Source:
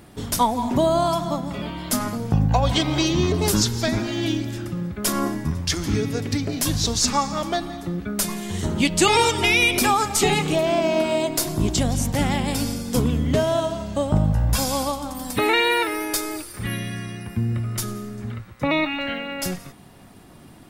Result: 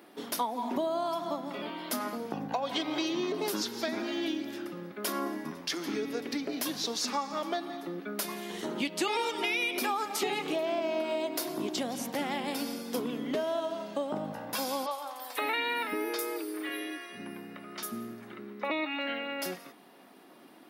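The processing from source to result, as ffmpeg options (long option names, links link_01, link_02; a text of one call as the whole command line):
ffmpeg -i in.wav -filter_complex "[0:a]asettb=1/sr,asplit=3[link_01][link_02][link_03];[link_01]atrim=end=14.864[link_04];[link_02]atrim=start=14.86:end=18.7,asetpts=PTS-STARTPTS,afade=type=in:duration=0.004:curve=qsin,afade=type=out:start_time=3.836:duration=0.004:curve=qsin,acrossover=split=440|6000[link_05][link_06][link_07];[link_07]adelay=50[link_08];[link_05]adelay=550[link_09];[link_09][link_06][link_08]amix=inputs=3:normalize=0,atrim=end_sample=169344[link_10];[link_03]atrim=start=18.696[link_11];[link_04][link_10]acrossfade=duration=0.004:curve1=hsin:curve2=qsin[link_12];[link_12][link_11]acrossfade=duration=0.004:curve1=qsin:curve2=hsin,highpass=frequency=260:width=0.5412,highpass=frequency=260:width=1.3066,equalizer=frequency=7700:width_type=o:width=0.77:gain=-10.5,acompressor=threshold=-25dB:ratio=3,volume=-4.5dB" out.wav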